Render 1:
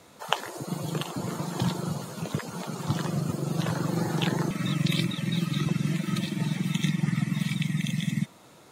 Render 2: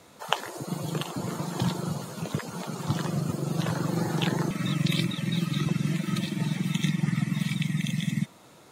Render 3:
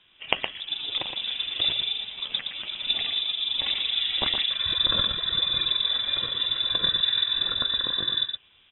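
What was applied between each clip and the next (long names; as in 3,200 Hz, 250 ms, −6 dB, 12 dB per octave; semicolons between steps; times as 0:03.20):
no processing that can be heard
mu-law and A-law mismatch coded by A; voice inversion scrambler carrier 3,700 Hz; on a send: single-tap delay 117 ms −6.5 dB; on the sum: level +1.5 dB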